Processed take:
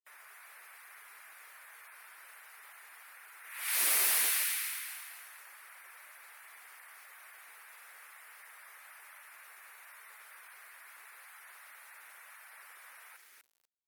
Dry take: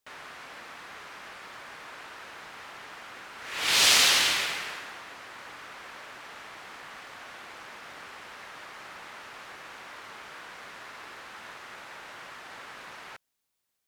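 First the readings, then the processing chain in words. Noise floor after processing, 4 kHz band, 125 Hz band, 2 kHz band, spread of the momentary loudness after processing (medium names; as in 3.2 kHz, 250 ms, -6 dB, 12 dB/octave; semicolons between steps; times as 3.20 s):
-59 dBFS, -15.5 dB, under -35 dB, -9.5 dB, 21 LU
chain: differentiator; feedback echo behind a high-pass 247 ms, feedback 41%, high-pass 1.8 kHz, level -3 dB; hard clipper -22 dBFS, distortion -12 dB; high-order bell 4.7 kHz -14 dB; feedback delay 105 ms, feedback 22%, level -18 dB; bit crusher 10-bit; high-pass 290 Hz 12 dB/octave; spectral gate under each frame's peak -20 dB strong; trim +3 dB; Opus 256 kbps 48 kHz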